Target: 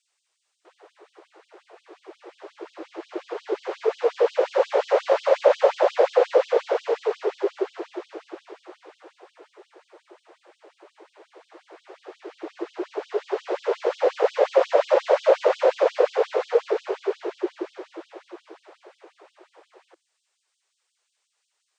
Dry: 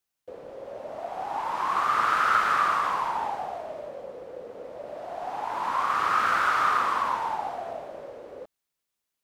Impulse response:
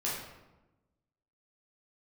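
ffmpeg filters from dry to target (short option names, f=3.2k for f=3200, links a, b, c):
-af "asetrate=18698,aresample=44100,afftfilt=real='re*gte(b*sr/1024,320*pow(3000/320,0.5+0.5*sin(2*PI*5.6*pts/sr)))':imag='im*gte(b*sr/1024,320*pow(3000/320,0.5+0.5*sin(2*PI*5.6*pts/sr)))':win_size=1024:overlap=0.75,volume=8.5dB"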